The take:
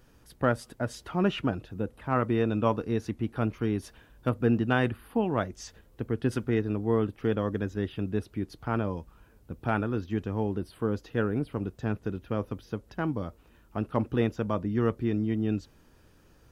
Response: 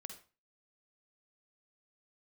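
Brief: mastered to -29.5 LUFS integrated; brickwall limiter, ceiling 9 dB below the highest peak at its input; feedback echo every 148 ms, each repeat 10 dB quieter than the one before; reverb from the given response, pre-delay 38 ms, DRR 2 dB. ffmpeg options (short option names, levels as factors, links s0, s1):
-filter_complex "[0:a]alimiter=limit=0.106:level=0:latency=1,aecho=1:1:148|296|444|592:0.316|0.101|0.0324|0.0104,asplit=2[s0][s1];[1:a]atrim=start_sample=2205,adelay=38[s2];[s1][s2]afir=irnorm=-1:irlink=0,volume=1.41[s3];[s0][s3]amix=inputs=2:normalize=0,volume=1.06"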